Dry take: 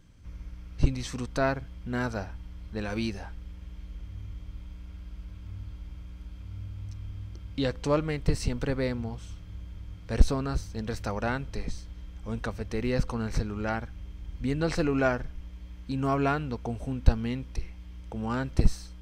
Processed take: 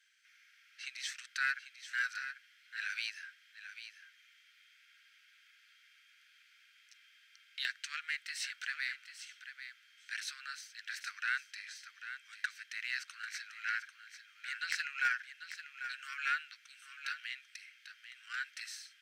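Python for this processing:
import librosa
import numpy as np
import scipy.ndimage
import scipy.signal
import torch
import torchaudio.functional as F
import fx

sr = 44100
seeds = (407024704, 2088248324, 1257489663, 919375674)

y = scipy.signal.sosfilt(scipy.signal.butter(12, 1500.0, 'highpass', fs=sr, output='sos'), x)
y = fx.high_shelf(y, sr, hz=2700.0, db=-11.0)
y = fx.cheby_harmonics(y, sr, harmonics=(2, 3, 5, 7), levels_db=(-39, -21, -17, -22), full_scale_db=-26.5)
y = y + 10.0 ** (-10.5 / 20.0) * np.pad(y, (int(793 * sr / 1000.0), 0))[:len(y)]
y = y * librosa.db_to_amplitude(7.5)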